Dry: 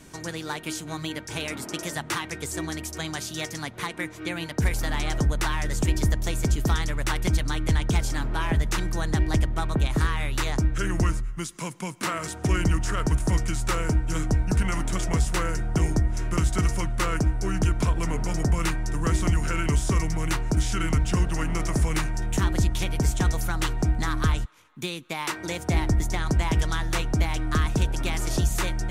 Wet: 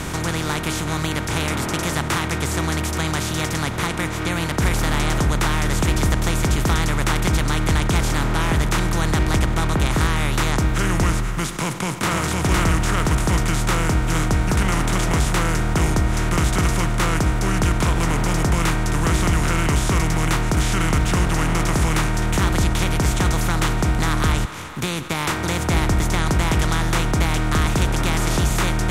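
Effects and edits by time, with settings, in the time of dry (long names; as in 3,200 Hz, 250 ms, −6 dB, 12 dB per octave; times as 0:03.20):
0:11.59–0:12.20: delay throw 510 ms, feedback 10%, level −2 dB
whole clip: compressor on every frequency bin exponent 0.4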